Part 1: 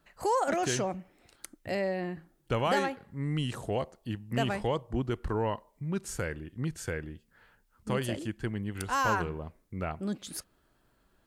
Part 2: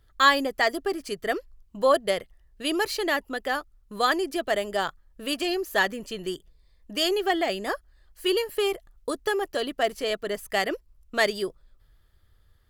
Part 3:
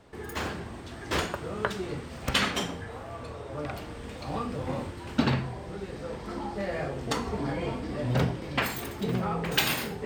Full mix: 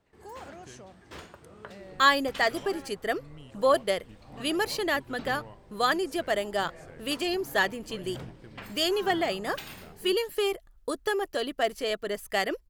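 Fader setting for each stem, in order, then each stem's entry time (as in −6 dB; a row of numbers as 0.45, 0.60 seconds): −17.5, −2.0, −16.0 decibels; 0.00, 1.80, 0.00 seconds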